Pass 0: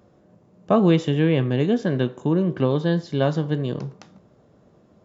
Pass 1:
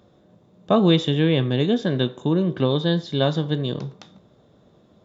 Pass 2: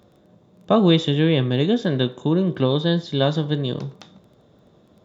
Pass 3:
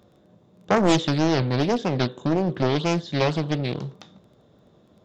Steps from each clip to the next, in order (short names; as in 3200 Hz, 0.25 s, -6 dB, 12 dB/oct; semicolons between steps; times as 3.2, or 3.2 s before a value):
bell 3600 Hz +14 dB 0.26 oct
crackle 13/s -45 dBFS; gain +1 dB
Doppler distortion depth 0.94 ms; gain -2 dB